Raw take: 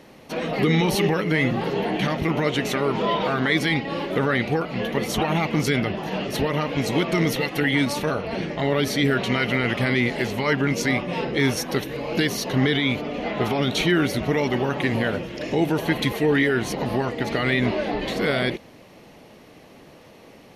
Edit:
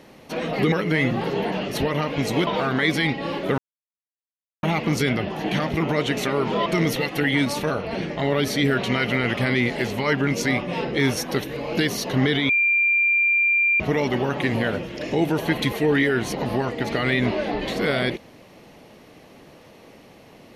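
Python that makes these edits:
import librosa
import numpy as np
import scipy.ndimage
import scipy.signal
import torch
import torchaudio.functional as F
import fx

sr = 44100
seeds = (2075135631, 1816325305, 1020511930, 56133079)

y = fx.edit(x, sr, fx.cut(start_s=0.72, length_s=0.4),
    fx.swap(start_s=1.92, length_s=1.22, other_s=6.11, other_length_s=0.95),
    fx.silence(start_s=4.25, length_s=1.05),
    fx.bleep(start_s=12.89, length_s=1.31, hz=2380.0, db=-16.0), tone=tone)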